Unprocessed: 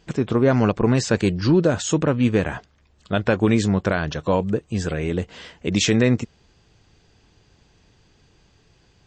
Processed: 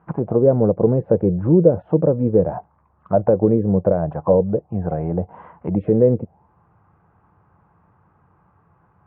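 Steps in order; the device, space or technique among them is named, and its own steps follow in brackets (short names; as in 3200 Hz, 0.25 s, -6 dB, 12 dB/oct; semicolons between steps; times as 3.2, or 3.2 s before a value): envelope filter bass rig (envelope low-pass 480–1200 Hz down, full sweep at -15 dBFS; speaker cabinet 78–2300 Hz, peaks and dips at 92 Hz +4 dB, 170 Hz +6 dB, 260 Hz -5 dB, 410 Hz -5 dB, 850 Hz +4 dB, 1800 Hz -3 dB); gain -1 dB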